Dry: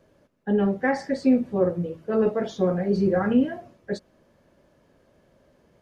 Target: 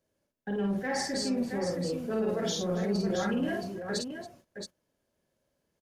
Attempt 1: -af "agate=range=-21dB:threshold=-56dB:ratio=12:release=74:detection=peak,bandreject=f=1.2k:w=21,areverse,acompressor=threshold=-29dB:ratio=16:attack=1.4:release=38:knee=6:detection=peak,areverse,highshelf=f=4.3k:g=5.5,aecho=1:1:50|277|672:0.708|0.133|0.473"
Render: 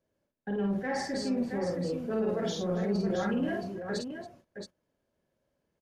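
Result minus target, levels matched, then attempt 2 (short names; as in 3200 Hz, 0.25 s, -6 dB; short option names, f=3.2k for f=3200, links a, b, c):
8000 Hz band -7.0 dB
-af "agate=range=-21dB:threshold=-56dB:ratio=12:release=74:detection=peak,bandreject=f=1.2k:w=21,areverse,acompressor=threshold=-29dB:ratio=16:attack=1.4:release=38:knee=6:detection=peak,areverse,highshelf=f=4.3k:g=16,aecho=1:1:50|277|672:0.708|0.133|0.473"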